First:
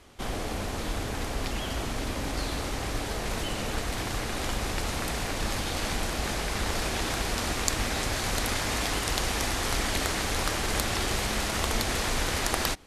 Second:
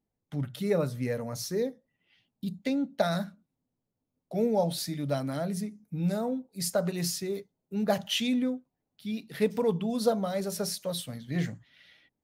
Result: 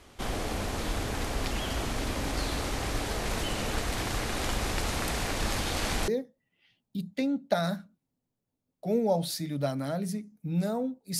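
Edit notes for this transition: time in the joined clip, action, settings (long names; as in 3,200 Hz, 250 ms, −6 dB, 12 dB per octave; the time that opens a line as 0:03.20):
first
0:06.08: continue with second from 0:01.56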